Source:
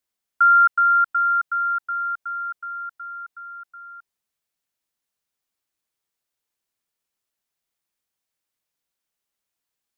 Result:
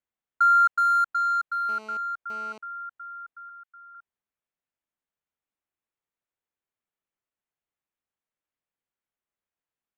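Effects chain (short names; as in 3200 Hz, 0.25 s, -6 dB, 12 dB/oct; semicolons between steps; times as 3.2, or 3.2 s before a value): Wiener smoothing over 9 samples; 1.69–2.58 GSM buzz -41 dBFS; 3.49–3.95 HPF 1300 Hz 12 dB/oct; gain -4 dB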